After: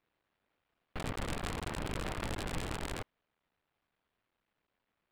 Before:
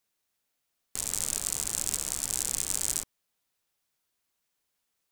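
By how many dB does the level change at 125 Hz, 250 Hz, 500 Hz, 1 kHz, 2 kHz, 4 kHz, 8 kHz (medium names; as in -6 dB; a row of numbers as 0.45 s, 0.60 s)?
+7.5 dB, +7.0 dB, +6.5 dB, +5.5 dB, +3.0 dB, -7.0 dB, -22.5 dB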